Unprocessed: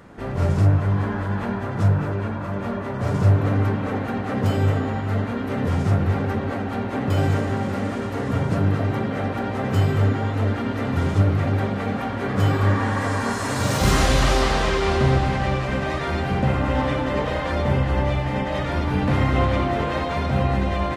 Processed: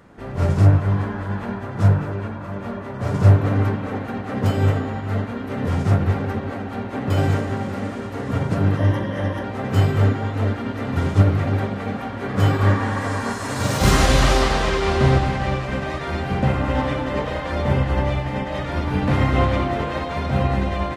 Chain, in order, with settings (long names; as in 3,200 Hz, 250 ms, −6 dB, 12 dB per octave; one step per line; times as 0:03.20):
0:08.77–0:09.44: EQ curve with evenly spaced ripples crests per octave 1.2, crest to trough 10 dB
expander for the loud parts 1.5 to 1, over −28 dBFS
level +4.5 dB